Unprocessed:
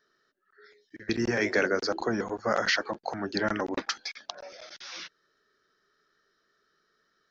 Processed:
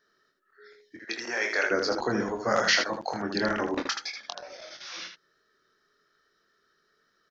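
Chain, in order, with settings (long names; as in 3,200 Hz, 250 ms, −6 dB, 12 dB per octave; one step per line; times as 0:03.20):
0:00.98–0:01.71: high-pass filter 690 Hz 12 dB per octave
0:02.33–0:03.21: high-shelf EQ 5,400 Hz +8.5 dB
ambience of single reflections 24 ms −5.5 dB, 79 ms −6 dB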